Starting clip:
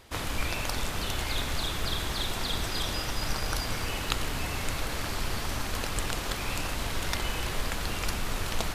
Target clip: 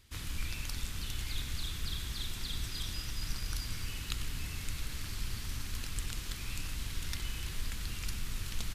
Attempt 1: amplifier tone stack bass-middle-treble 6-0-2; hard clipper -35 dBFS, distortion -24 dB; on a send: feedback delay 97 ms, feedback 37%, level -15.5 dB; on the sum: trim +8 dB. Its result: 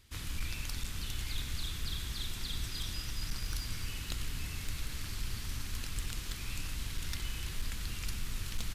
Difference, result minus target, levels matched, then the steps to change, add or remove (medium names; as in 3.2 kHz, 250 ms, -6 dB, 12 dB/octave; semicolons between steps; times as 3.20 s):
hard clipper: distortion +24 dB
change: hard clipper -24.5 dBFS, distortion -49 dB